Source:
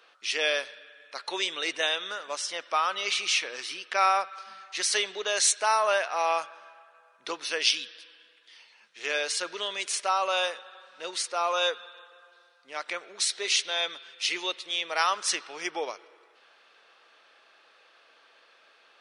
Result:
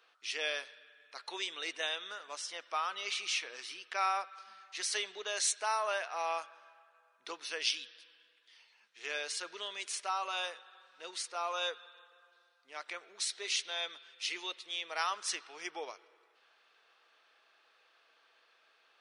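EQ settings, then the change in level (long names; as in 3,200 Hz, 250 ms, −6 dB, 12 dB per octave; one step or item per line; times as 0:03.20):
low-shelf EQ 180 Hz −10 dB
notch filter 560 Hz, Q 12
−8.5 dB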